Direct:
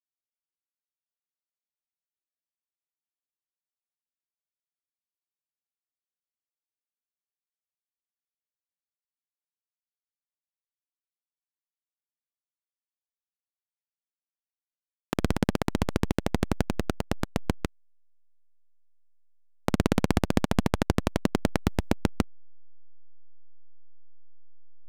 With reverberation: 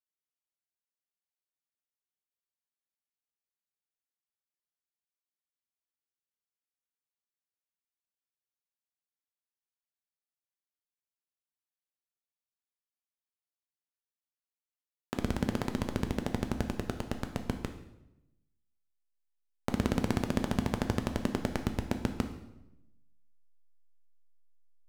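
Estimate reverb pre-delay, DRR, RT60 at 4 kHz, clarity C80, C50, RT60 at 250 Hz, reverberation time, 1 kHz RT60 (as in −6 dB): 3 ms, 6.0 dB, 0.75 s, 12.0 dB, 10.0 dB, 1.1 s, 0.90 s, 0.85 s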